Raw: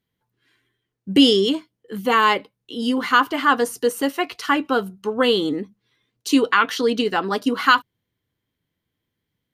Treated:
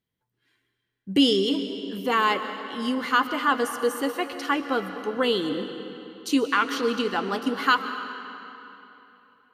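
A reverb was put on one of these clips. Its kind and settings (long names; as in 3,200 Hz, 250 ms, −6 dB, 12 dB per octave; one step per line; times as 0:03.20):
comb and all-pass reverb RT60 3.3 s, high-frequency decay 0.8×, pre-delay 90 ms, DRR 8.5 dB
level −5.5 dB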